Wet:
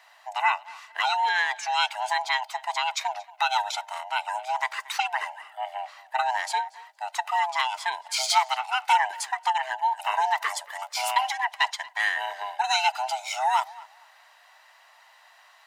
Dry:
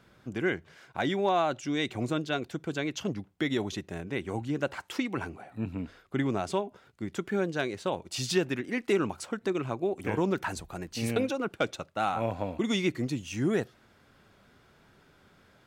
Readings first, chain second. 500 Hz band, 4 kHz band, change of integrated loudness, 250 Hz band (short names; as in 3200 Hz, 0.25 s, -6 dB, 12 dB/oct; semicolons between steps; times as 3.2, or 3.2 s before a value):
-8.0 dB, +9.0 dB, +5.0 dB, under -40 dB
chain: band-swap scrambler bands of 500 Hz; HPF 910 Hz 24 dB/oct; tape echo 0.231 s, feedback 23%, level -20 dB, low-pass 4700 Hz; gain +8.5 dB